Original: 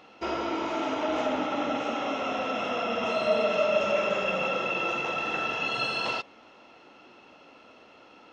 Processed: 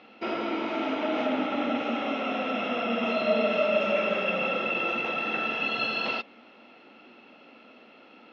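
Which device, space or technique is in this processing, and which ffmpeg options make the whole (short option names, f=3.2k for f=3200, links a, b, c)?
kitchen radio: -af "highpass=170,equalizer=f=230:t=q:w=4:g=9,equalizer=f=990:t=q:w=4:g=-5,equalizer=f=2.3k:t=q:w=4:g=4,lowpass=f=4.5k:w=0.5412,lowpass=f=4.5k:w=1.3066"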